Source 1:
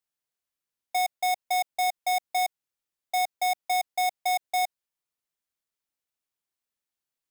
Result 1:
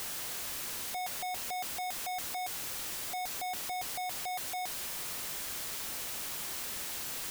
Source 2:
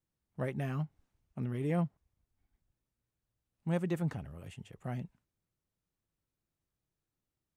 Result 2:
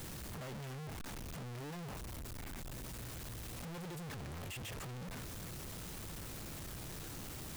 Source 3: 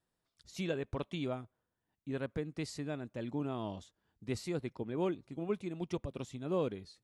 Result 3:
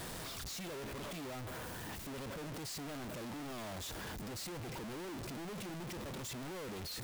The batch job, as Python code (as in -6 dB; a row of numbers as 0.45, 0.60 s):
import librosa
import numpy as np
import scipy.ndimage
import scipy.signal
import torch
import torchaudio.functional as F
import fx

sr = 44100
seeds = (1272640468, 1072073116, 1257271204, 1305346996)

y = np.sign(x) * np.sqrt(np.mean(np.square(x)))
y = y * 10.0 ** (-4.5 / 20.0)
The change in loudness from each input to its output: -8.0, -8.5, -4.5 LU